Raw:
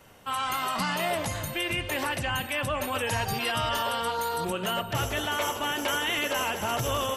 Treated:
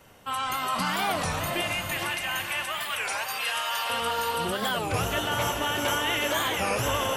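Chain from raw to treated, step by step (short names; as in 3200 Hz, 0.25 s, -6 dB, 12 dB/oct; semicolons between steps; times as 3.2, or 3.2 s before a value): 1.61–3.9 HPF 1000 Hz 12 dB/oct; diffused feedback echo 0.453 s, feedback 47%, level -4 dB; record warp 33 1/3 rpm, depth 250 cents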